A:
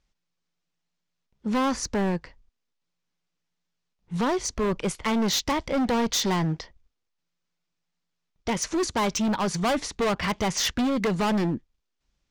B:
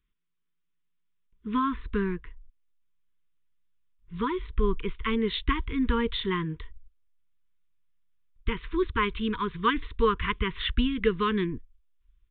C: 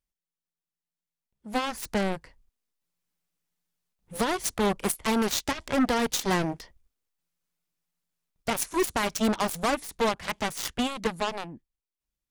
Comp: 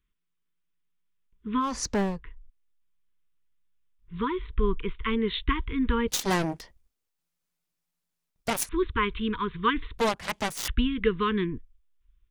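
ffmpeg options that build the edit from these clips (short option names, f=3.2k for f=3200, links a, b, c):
-filter_complex "[2:a]asplit=2[a][b];[1:a]asplit=4[c][d][e][f];[c]atrim=end=1.83[g];[0:a]atrim=start=1.59:end=2.24[h];[d]atrim=start=2:end=6.082[i];[a]atrim=start=6.078:end=8.692[j];[e]atrim=start=8.688:end=9.982[k];[b]atrim=start=9.978:end=10.682[l];[f]atrim=start=10.678[m];[g][h]acrossfade=d=0.24:c1=tri:c2=tri[n];[n][i]acrossfade=d=0.24:c1=tri:c2=tri[o];[o][j]acrossfade=d=0.004:c1=hsin:c2=hsin[p];[p][k]acrossfade=d=0.004:c1=hsin:c2=hsin[q];[q][l]acrossfade=d=0.004:c1=hsin:c2=hsin[r];[r][m]acrossfade=d=0.004:c1=hsin:c2=hsin"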